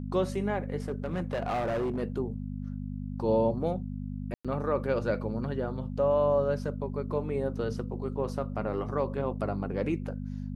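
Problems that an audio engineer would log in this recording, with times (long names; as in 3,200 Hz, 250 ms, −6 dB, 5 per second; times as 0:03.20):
mains hum 50 Hz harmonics 5 −36 dBFS
0:00.89–0:02.03: clipping −26.5 dBFS
0:04.34–0:04.45: drop-out 106 ms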